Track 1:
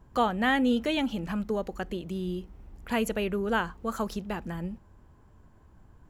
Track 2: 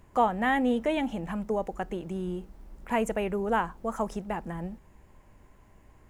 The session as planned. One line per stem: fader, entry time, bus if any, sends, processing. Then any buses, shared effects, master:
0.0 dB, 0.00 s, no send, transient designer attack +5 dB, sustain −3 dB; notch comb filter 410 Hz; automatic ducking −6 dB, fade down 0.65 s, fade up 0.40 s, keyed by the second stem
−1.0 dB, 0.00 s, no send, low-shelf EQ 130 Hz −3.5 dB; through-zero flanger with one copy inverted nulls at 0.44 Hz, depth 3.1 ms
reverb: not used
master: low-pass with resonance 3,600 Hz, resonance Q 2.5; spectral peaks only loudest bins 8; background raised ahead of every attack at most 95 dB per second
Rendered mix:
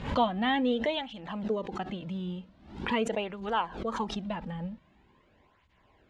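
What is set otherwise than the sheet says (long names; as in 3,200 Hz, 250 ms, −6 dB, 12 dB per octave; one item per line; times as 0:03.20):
stem 1 0.0 dB → −8.0 dB
master: missing spectral peaks only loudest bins 8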